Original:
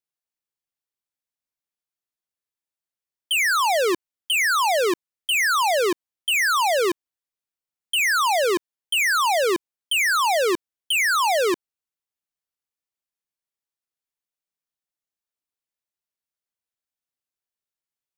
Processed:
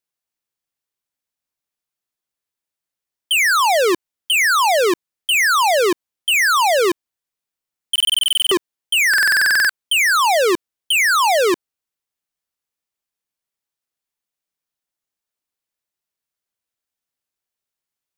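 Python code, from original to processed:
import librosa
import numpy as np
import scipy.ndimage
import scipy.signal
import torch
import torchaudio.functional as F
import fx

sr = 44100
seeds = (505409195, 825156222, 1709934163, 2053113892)

y = fx.buffer_glitch(x, sr, at_s=(7.91, 9.09), block=2048, repeats=12)
y = y * 10.0 ** (5.0 / 20.0)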